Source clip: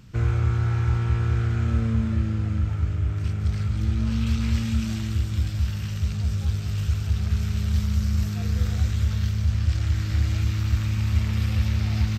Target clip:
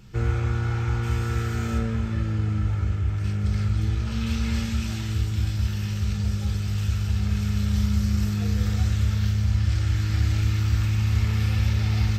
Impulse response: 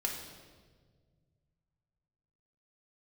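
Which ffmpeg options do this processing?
-filter_complex "[0:a]asettb=1/sr,asplit=3[a][b][c];[a]atrim=end=1.034[d];[b]atrim=start=1.03:end=1.78,asetpts=PTS-STARTPTS,afade=t=in:d=0.004:c=qsin,afade=t=out:st=0.746:d=0.004:c=qsin,aemphasis=mode=production:type=50fm[e];[c]atrim=start=1.776[f];[d][e]acrossfade=d=0.004:c1=hsin:c2=qsin[g];[g][f]acrossfade=d=0.004:c1=qsin:c2=hsin[h];[1:a]atrim=start_sample=2205,atrim=end_sample=3087[i];[h][i]afir=irnorm=-1:irlink=0"

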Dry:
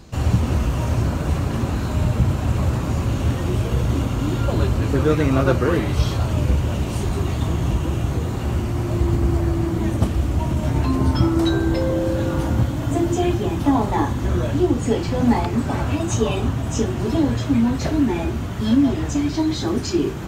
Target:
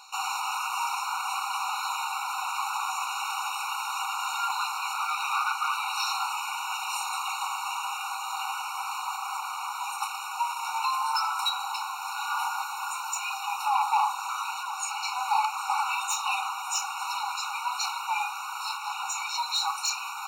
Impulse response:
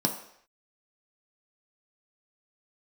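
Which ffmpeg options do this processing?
-filter_complex "[0:a]highpass=580,asplit=2[a][b];[b]alimiter=limit=-18dB:level=0:latency=1:release=199,volume=0.5dB[c];[a][c]amix=inputs=2:normalize=0,asoftclip=type=hard:threshold=-18.5dB,afftfilt=real='re*eq(mod(floor(b*sr/1024/740),2),1)':imag='im*eq(mod(floor(b*sr/1024/740),2),1)':win_size=1024:overlap=0.75"

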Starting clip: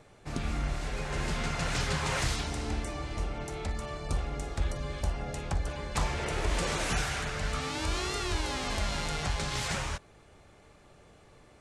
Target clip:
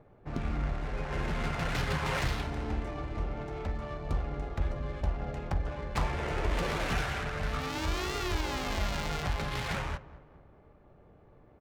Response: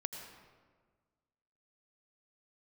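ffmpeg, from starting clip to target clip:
-filter_complex "[0:a]asplit=2[a][b];[b]adelay=209,lowpass=f=4.7k:p=1,volume=-16dB,asplit=2[c][d];[d]adelay=209,lowpass=f=4.7k:p=1,volume=0.48,asplit=2[e][f];[f]adelay=209,lowpass=f=4.7k:p=1,volume=0.48,asplit=2[g][h];[h]adelay=209,lowpass=f=4.7k:p=1,volume=0.48[i];[a][c][e][g][i]amix=inputs=5:normalize=0,adynamicsmooth=sensitivity=7:basefreq=1.1k"

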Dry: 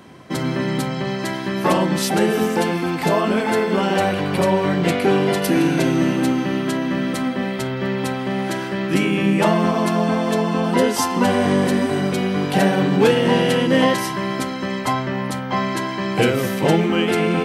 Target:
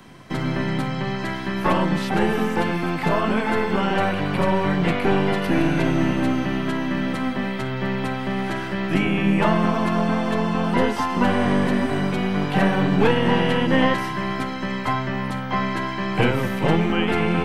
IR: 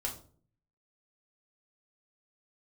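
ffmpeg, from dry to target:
-filter_complex "[0:a]acrossover=split=250|860[a][b][c];[b]aeval=exprs='max(val(0),0)':c=same[d];[a][d][c]amix=inputs=3:normalize=0,acrossover=split=3200[e][f];[f]acompressor=threshold=-45dB:ratio=4:attack=1:release=60[g];[e][g]amix=inputs=2:normalize=0"

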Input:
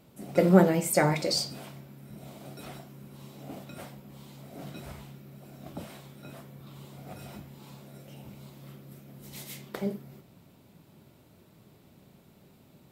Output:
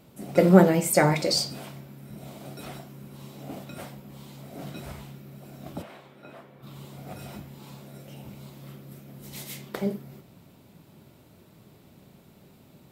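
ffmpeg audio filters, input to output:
-filter_complex "[0:a]asplit=3[a][b][c];[a]afade=t=out:st=5.81:d=0.02[d];[b]bass=f=250:g=-12,treble=f=4k:g=-15,afade=t=in:st=5.81:d=0.02,afade=t=out:st=6.62:d=0.02[e];[c]afade=t=in:st=6.62:d=0.02[f];[d][e][f]amix=inputs=3:normalize=0,volume=3.5dB"

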